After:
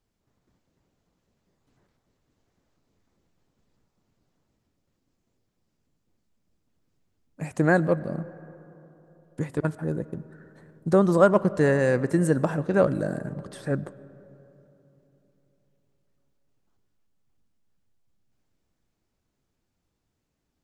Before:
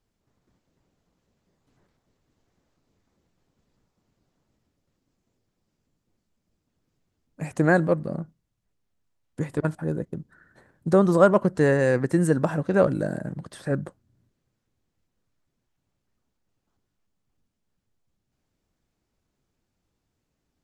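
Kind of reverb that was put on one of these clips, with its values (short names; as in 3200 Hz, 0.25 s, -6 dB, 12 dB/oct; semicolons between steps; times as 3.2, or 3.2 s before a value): digital reverb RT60 3.6 s, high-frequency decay 0.35×, pre-delay 65 ms, DRR 18.5 dB; gain -1 dB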